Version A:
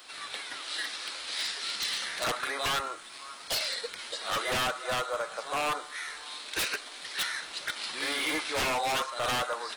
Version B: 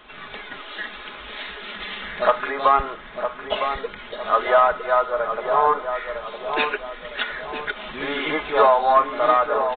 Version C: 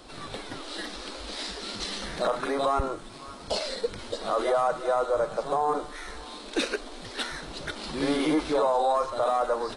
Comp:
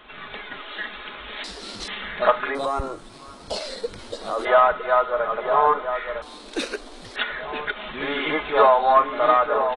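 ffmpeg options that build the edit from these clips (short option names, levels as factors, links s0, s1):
-filter_complex "[2:a]asplit=3[s0][s1][s2];[1:a]asplit=4[s3][s4][s5][s6];[s3]atrim=end=1.442[s7];[s0]atrim=start=1.438:end=1.882[s8];[s4]atrim=start=1.878:end=2.552[s9];[s1]atrim=start=2.548:end=4.452[s10];[s5]atrim=start=4.448:end=6.222[s11];[s2]atrim=start=6.218:end=7.162[s12];[s6]atrim=start=7.158[s13];[s7][s8]acrossfade=d=0.004:c1=hsin:c2=hsin[s14];[s14][s9]acrossfade=d=0.004:c1=hsin:c2=hsin[s15];[s15][s10]acrossfade=d=0.004:c1=hsin:c2=hsin[s16];[s16][s11]acrossfade=d=0.004:c1=hsin:c2=hsin[s17];[s17][s12]acrossfade=d=0.004:c1=hsin:c2=hsin[s18];[s18][s13]acrossfade=d=0.004:c1=hsin:c2=hsin"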